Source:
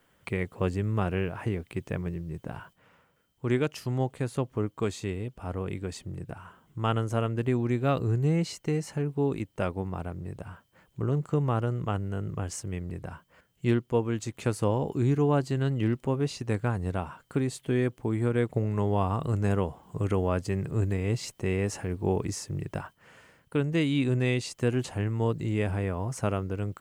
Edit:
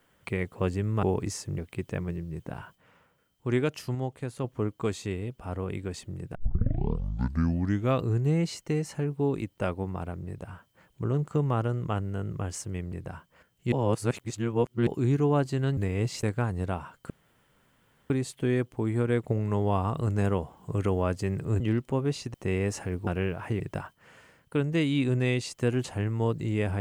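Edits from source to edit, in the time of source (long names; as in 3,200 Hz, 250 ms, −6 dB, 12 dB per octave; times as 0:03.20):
0:01.03–0:01.56: swap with 0:22.05–0:22.60
0:03.93–0:04.42: clip gain −4 dB
0:06.33: tape start 1.66 s
0:13.70–0:14.85: reverse
0:15.75–0:16.49: swap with 0:20.86–0:21.32
0:17.36: splice in room tone 1.00 s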